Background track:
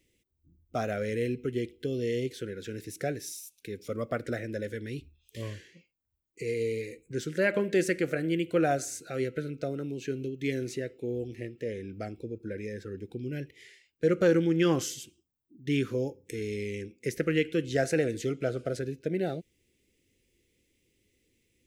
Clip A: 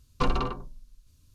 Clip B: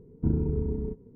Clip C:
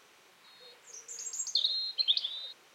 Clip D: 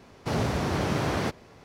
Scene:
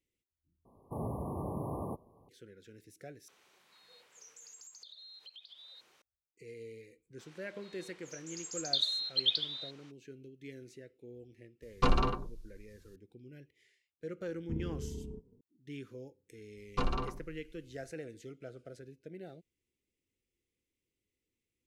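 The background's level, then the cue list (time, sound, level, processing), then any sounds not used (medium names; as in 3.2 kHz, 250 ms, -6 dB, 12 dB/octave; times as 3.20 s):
background track -17 dB
0.65 s: replace with D -10.5 dB + brick-wall FIR band-stop 1.2–9.5 kHz
3.28 s: replace with C -6.5 dB + compression 12:1, threshold -43 dBFS
7.18 s: add C -1 dB, fades 0.02 s + low-pass 6.6 kHz
11.62 s: add A -1.5 dB
14.26 s: add B -12.5 dB + low-pass 1.2 kHz
16.57 s: add A -7 dB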